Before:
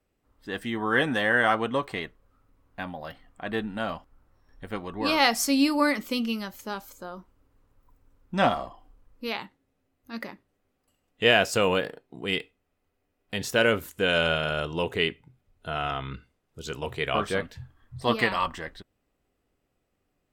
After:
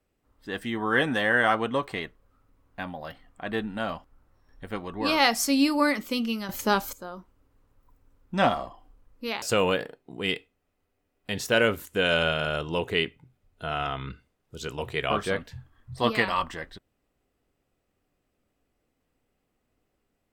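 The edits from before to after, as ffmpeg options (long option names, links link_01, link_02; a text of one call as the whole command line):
ffmpeg -i in.wav -filter_complex "[0:a]asplit=4[link_01][link_02][link_03][link_04];[link_01]atrim=end=6.492[link_05];[link_02]atrim=start=6.488:end=6.932,asetpts=PTS-STARTPTS,volume=11dB[link_06];[link_03]atrim=start=6.928:end=9.422[link_07];[link_04]atrim=start=11.458[link_08];[link_05][link_06]acrossfade=duration=0.004:curve1=hsin:curve2=hsin[link_09];[link_09][link_07]acrossfade=duration=0.004:curve1=hsin:curve2=hsin[link_10];[link_10][link_08]acrossfade=duration=0.004:curve1=hsin:curve2=hsin" out.wav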